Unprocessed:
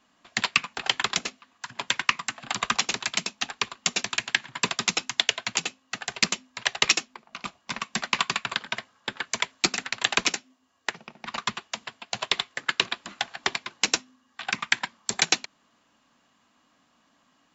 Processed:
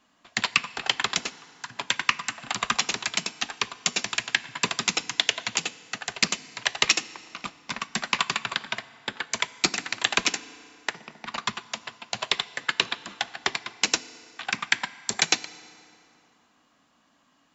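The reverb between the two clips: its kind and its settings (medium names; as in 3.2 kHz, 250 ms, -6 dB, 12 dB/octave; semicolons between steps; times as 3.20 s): FDN reverb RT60 2.9 s, high-frequency decay 0.65×, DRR 16 dB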